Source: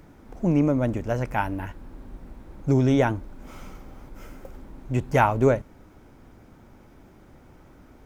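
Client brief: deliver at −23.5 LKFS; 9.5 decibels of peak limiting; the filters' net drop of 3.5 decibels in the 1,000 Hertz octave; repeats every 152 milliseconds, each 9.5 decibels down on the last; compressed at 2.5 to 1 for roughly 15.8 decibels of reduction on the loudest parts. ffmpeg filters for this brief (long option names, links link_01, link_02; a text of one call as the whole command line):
ffmpeg -i in.wav -af "equalizer=frequency=1000:width_type=o:gain=-4.5,acompressor=threshold=-41dB:ratio=2.5,alimiter=level_in=8.5dB:limit=-24dB:level=0:latency=1,volume=-8.5dB,aecho=1:1:152|304|456|608:0.335|0.111|0.0365|0.012,volume=21dB" out.wav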